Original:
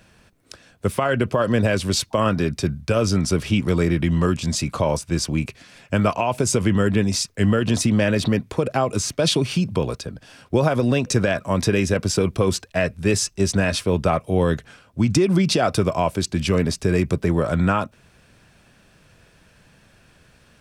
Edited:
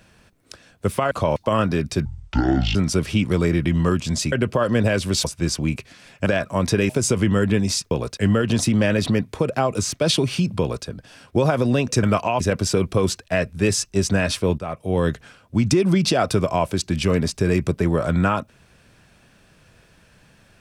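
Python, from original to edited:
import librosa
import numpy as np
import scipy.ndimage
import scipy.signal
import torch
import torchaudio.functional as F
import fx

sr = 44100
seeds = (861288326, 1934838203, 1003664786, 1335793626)

y = fx.edit(x, sr, fx.swap(start_s=1.11, length_s=0.92, other_s=4.69, other_length_s=0.25),
    fx.speed_span(start_s=2.72, length_s=0.4, speed=0.57),
    fx.swap(start_s=5.96, length_s=0.37, other_s=11.21, other_length_s=0.63),
    fx.duplicate(start_s=9.78, length_s=0.26, to_s=7.35),
    fx.fade_in_from(start_s=14.02, length_s=0.49, floor_db=-15.0), tone=tone)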